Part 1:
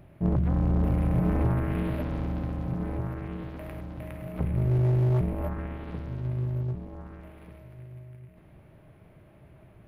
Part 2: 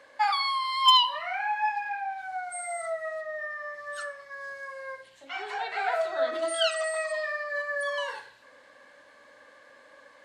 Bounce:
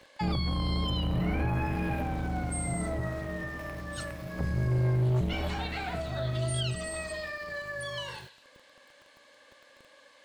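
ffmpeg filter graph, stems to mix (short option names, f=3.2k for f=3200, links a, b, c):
-filter_complex "[0:a]aeval=exprs='val(0)*gte(abs(val(0)),0.00596)':c=same,volume=-2dB[a];[1:a]highshelf=f=2.2k:t=q:w=1.5:g=6.5,acompressor=threshold=-29dB:ratio=6,volume=-4dB[b];[a][b]amix=inputs=2:normalize=0,alimiter=limit=-22dB:level=0:latency=1:release=17"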